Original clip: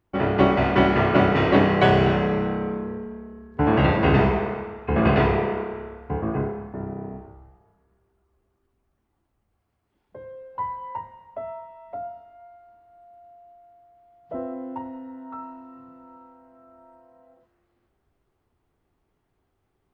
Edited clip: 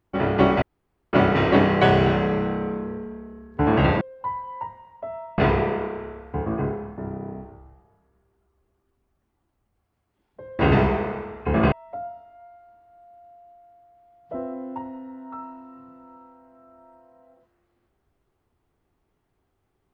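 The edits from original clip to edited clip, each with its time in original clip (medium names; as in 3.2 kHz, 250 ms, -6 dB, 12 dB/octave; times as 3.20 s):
0.62–1.13 s: room tone
4.01–5.14 s: swap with 10.35–11.72 s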